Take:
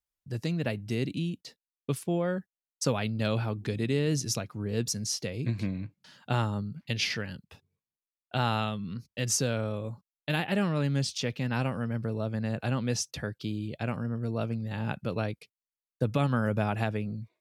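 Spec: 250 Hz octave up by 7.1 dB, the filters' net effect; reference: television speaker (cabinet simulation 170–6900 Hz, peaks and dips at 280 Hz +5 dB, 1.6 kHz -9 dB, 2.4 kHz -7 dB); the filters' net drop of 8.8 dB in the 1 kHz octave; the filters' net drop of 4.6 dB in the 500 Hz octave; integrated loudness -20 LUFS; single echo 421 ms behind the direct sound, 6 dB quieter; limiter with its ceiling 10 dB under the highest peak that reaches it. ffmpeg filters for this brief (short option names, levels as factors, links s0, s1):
-af "equalizer=f=250:t=o:g=9,equalizer=f=500:t=o:g=-7,equalizer=f=1000:t=o:g=-9,alimiter=limit=0.0668:level=0:latency=1,highpass=f=170:w=0.5412,highpass=f=170:w=1.3066,equalizer=f=280:t=q:w=4:g=5,equalizer=f=1600:t=q:w=4:g=-9,equalizer=f=2400:t=q:w=4:g=-7,lowpass=f=6900:w=0.5412,lowpass=f=6900:w=1.3066,aecho=1:1:421:0.501,volume=4.22"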